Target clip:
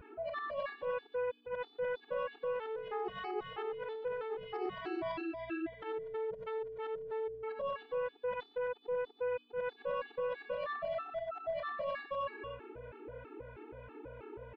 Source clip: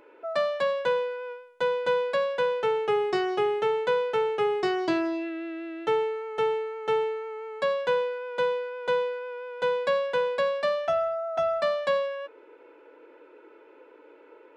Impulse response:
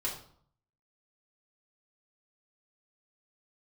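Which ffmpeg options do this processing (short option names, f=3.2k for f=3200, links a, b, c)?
-filter_complex "[0:a]afftfilt=real='re':imag='-im':win_size=8192:overlap=0.75,asplit=2[a][b];[b]asoftclip=type=tanh:threshold=-33dB,volume=-4dB[c];[a][c]amix=inputs=2:normalize=0,acrossover=split=790[d][e];[d]aeval=exprs='val(0)*(1-0.7/2+0.7/2*cos(2*PI*3.1*n/s))':c=same[f];[e]aeval=exprs='val(0)*(1-0.7/2-0.7/2*cos(2*PI*3.1*n/s))':c=same[g];[f][g]amix=inputs=2:normalize=0,aeval=exprs='val(0)+0.00112*(sin(2*PI*60*n/s)+sin(2*PI*2*60*n/s)/2+sin(2*PI*3*60*n/s)/3+sin(2*PI*4*60*n/s)/4+sin(2*PI*5*60*n/s)/5)':c=same,aecho=1:1:119.5|242:0.282|0.501,acontrast=86,lowpass=f=3.8k:w=0.5412,lowpass=f=3.8k:w=1.3066,highshelf=f=2.3k:g=-5,areverse,acompressor=threshold=-34dB:ratio=10,areverse,afftfilt=real='re*gt(sin(2*PI*3.1*pts/sr)*(1-2*mod(floor(b*sr/1024/230),2)),0)':imag='im*gt(sin(2*PI*3.1*pts/sr)*(1-2*mod(floor(b*sr/1024/230),2)),0)':win_size=1024:overlap=0.75,volume=1dB"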